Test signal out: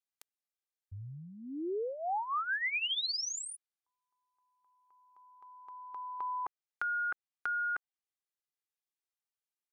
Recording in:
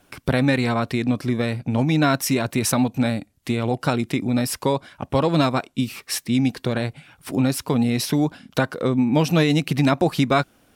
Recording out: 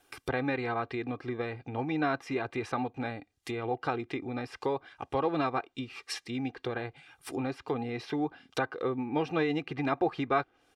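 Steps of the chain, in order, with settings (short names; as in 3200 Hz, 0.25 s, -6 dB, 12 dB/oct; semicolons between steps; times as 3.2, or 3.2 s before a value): treble ducked by the level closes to 2000 Hz, closed at -19.5 dBFS; low shelf 270 Hz -11 dB; comb 2.5 ms, depth 60%; gain -7 dB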